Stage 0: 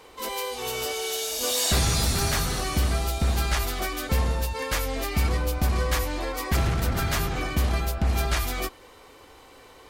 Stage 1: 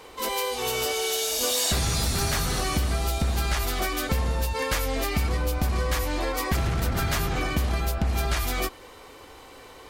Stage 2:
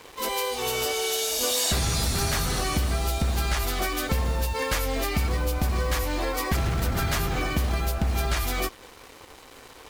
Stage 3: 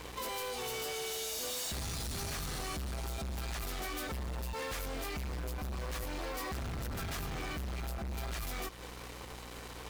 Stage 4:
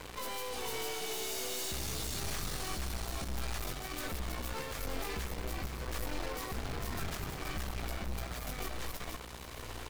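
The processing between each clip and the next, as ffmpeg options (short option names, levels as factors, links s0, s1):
-af "acompressor=threshold=0.0562:ratio=6,volume=1.5"
-af "acrusher=bits=6:mix=0:aa=0.5"
-af "aeval=exprs='val(0)+0.00355*(sin(2*PI*60*n/s)+sin(2*PI*2*60*n/s)/2+sin(2*PI*3*60*n/s)/3+sin(2*PI*4*60*n/s)/4+sin(2*PI*5*60*n/s)/5)':c=same,asoftclip=type=hard:threshold=0.0335,acompressor=threshold=0.0126:ratio=6"
-filter_complex "[0:a]asplit=2[s0][s1];[s1]asplit=5[s2][s3][s4][s5][s6];[s2]adelay=475,afreqshift=-61,volume=0.631[s7];[s3]adelay=950,afreqshift=-122,volume=0.226[s8];[s4]adelay=1425,afreqshift=-183,volume=0.0822[s9];[s5]adelay=1900,afreqshift=-244,volume=0.0295[s10];[s6]adelay=2375,afreqshift=-305,volume=0.0106[s11];[s7][s8][s9][s10][s11]amix=inputs=5:normalize=0[s12];[s0][s12]amix=inputs=2:normalize=0,aeval=exprs='0.0531*(cos(1*acos(clip(val(0)/0.0531,-1,1)))-cos(1*PI/2))+0.00668*(cos(8*acos(clip(val(0)/0.0531,-1,1)))-cos(8*PI/2))':c=same,volume=0.794"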